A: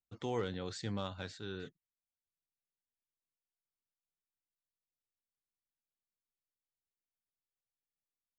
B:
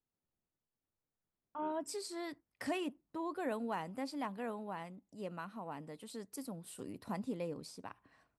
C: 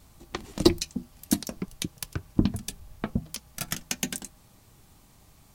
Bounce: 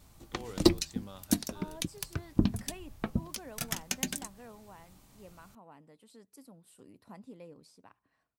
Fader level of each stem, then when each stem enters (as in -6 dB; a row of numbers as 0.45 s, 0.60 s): -9.0 dB, -9.5 dB, -3.0 dB; 0.10 s, 0.00 s, 0.00 s